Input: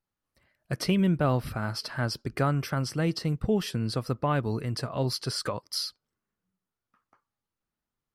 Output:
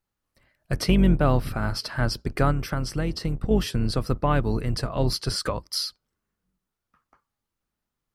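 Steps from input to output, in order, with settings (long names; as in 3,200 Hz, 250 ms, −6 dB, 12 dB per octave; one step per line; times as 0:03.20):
sub-octave generator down 2 octaves, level −1 dB
0:02.51–0:03.51: downward compressor 5 to 1, threshold −26 dBFS, peak gain reduction 6 dB
level +3.5 dB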